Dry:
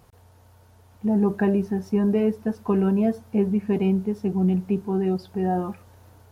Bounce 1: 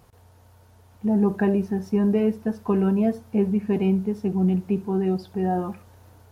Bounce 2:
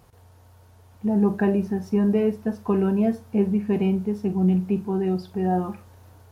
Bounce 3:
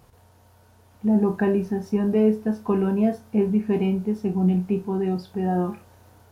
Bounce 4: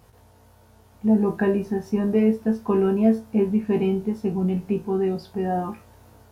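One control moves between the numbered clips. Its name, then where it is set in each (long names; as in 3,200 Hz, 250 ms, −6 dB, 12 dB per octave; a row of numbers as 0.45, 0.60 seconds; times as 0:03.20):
flutter between parallel walls, walls apart: 11.8, 7.5, 4.8, 3.1 metres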